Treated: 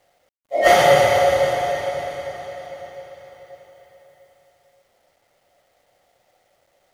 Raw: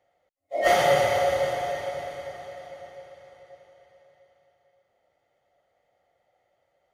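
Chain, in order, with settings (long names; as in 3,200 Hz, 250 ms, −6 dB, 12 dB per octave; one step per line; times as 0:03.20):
bit-depth reduction 12 bits, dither none
level +7 dB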